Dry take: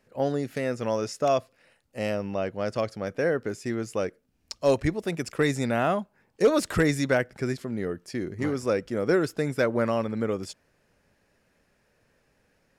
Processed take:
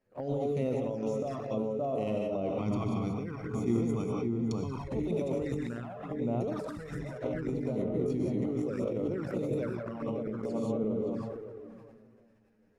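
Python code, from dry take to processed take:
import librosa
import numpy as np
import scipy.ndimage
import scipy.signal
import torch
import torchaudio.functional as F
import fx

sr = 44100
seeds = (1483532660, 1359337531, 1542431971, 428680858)

y = fx.echo_filtered(x, sr, ms=570, feedback_pct=32, hz=990.0, wet_db=-4)
y = fx.leveller(y, sr, passes=1)
y = fx.rev_gated(y, sr, seeds[0], gate_ms=210, shape='rising', drr_db=1.0)
y = fx.over_compress(y, sr, threshold_db=-23.0, ratio=-0.5)
y = fx.comb(y, sr, ms=0.9, depth=0.89, at=(2.58, 4.88))
y = fx.env_flanger(y, sr, rest_ms=10.9, full_db=-21.0)
y = fx.high_shelf(y, sr, hz=2000.0, db=-10.0)
y = fx.hum_notches(y, sr, base_hz=50, count=4)
y = fx.sustainer(y, sr, db_per_s=29.0)
y = y * 10.0 ** (-8.5 / 20.0)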